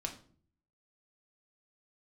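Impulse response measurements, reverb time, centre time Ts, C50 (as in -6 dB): 0.50 s, 13 ms, 11.0 dB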